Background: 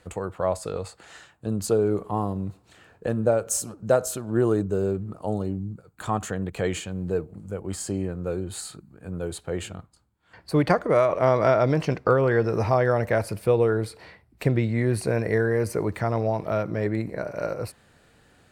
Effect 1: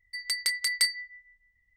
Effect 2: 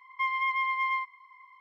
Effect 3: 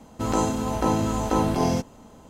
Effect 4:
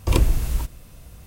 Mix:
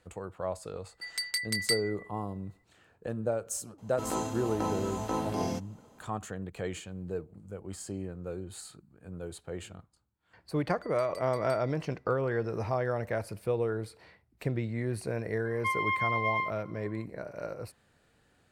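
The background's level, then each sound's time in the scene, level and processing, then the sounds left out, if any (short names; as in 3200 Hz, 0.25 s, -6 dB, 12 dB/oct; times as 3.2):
background -9.5 dB
0.88 add 1 -4 dB
3.78 add 3 -8.5 dB + low shelf 120 Hz -10.5 dB
10.69 add 1 -17.5 dB + compressor 1.5:1, threshold -42 dBFS
15.45 add 2 -1.5 dB
not used: 4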